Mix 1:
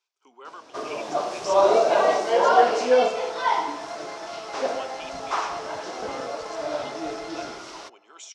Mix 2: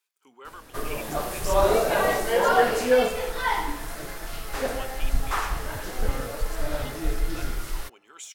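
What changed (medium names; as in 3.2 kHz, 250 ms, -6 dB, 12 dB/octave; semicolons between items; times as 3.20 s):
second sound -4.0 dB; master: remove cabinet simulation 270–6500 Hz, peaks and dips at 350 Hz +3 dB, 670 Hz +7 dB, 1 kHz +4 dB, 1.8 kHz -6 dB, 5.6 kHz +5 dB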